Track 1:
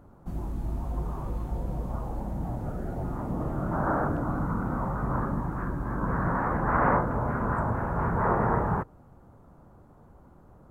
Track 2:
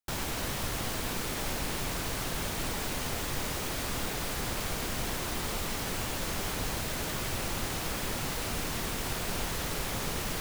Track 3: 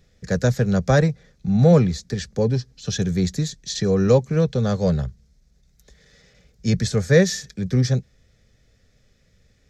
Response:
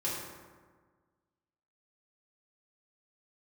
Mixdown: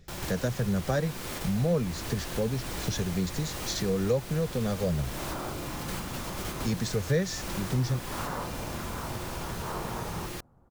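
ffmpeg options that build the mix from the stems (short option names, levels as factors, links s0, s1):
-filter_complex "[0:a]adelay=1450,volume=0.398[s0];[1:a]volume=0.944,asplit=2[s1][s2];[s2]volume=0.282[s3];[2:a]aphaser=in_gain=1:out_gain=1:delay=4.7:decay=0.28:speed=1.4:type=triangular,volume=1,asplit=2[s4][s5];[s5]apad=whole_len=458838[s6];[s1][s6]sidechaingate=range=0.355:threshold=0.00251:ratio=16:detection=peak[s7];[3:a]atrim=start_sample=2205[s8];[s3][s8]afir=irnorm=-1:irlink=0[s9];[s0][s7][s4][s9]amix=inputs=4:normalize=0,acompressor=threshold=0.0224:ratio=2"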